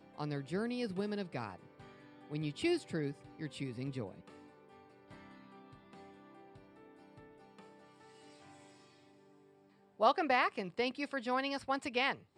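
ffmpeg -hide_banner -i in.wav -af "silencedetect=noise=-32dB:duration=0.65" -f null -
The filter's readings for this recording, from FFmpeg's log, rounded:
silence_start: 1.49
silence_end: 2.34 | silence_duration: 0.84
silence_start: 4.04
silence_end: 10.01 | silence_duration: 5.97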